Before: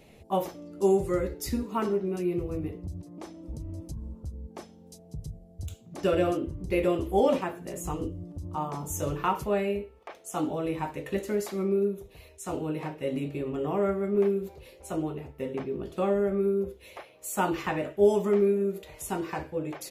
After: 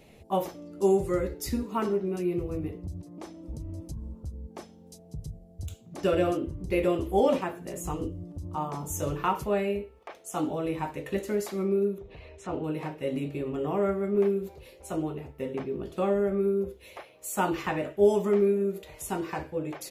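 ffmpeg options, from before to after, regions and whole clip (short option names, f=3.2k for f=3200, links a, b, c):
-filter_complex "[0:a]asettb=1/sr,asplit=3[a][b][c];[a]atrim=end=11.984[d];[b]atrim=start=11.98:end=12.64,asetpts=PTS-STARTPTS,afade=t=in:d=0.004:c=qsin,afade=t=out:st=0.656:d=0.004:c=qsin,lowpass=2.7k,acompressor=mode=upward:threshold=-38dB:ratio=2.5:attack=3.2:release=140:knee=2.83:detection=peak[e];[c]atrim=start=12.636[f];[d][e]acrossfade=d=0.004:c1=hsin:c2=qsin[g];[g][f]acrossfade=d=0.004:c1=qsin:c2=hsin"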